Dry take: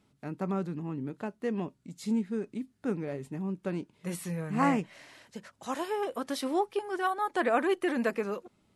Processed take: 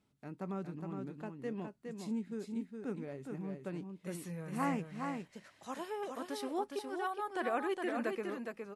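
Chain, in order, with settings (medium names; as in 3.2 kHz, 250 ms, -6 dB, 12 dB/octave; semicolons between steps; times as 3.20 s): delay 413 ms -5 dB; trim -8.5 dB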